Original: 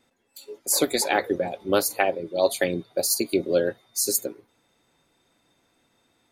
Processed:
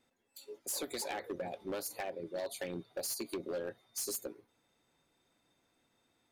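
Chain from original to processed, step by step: compression 8:1, threshold -24 dBFS, peak gain reduction 10 dB; hard clipper -24.5 dBFS, distortion -11 dB; trim -8.5 dB

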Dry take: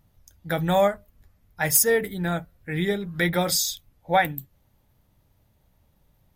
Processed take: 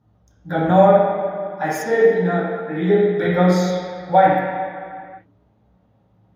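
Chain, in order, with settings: 0.69–3.24 s: high-pass 190 Hz 12 dB/octave; reverberation RT60 2.2 s, pre-delay 3 ms, DRR -12.5 dB; trim -14.5 dB

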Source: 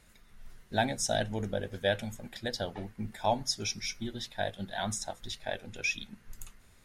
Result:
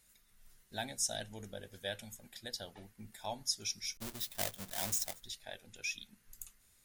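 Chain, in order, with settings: 3.97–5.20 s: square wave that keeps the level; pre-emphasis filter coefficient 0.8

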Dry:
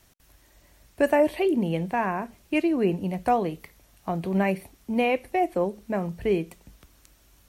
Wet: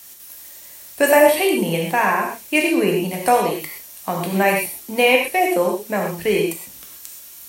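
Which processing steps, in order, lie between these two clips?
RIAA curve recording; gated-style reverb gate 150 ms flat, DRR 0 dB; trim +7 dB

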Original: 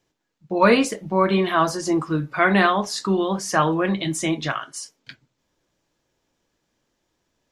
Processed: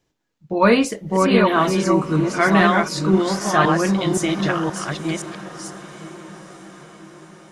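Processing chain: chunks repeated in reverse 522 ms, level -3 dB; bass shelf 210 Hz +5 dB; echo that smears into a reverb 919 ms, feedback 56%, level -15.5 dB

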